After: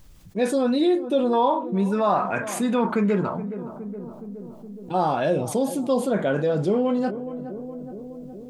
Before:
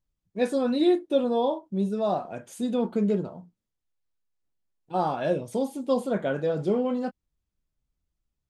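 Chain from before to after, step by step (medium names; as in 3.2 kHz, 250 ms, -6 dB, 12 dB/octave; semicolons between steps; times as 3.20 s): 1.33–3.35 s: high-order bell 1.5 kHz +12 dB; filtered feedback delay 418 ms, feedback 57%, low-pass 840 Hz, level -20.5 dB; level flattener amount 50%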